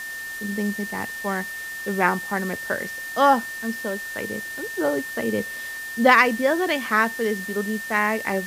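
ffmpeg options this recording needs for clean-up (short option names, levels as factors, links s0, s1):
-af "adeclick=t=4,bandreject=f=1800:w=30,afftdn=nr=30:nf=-33"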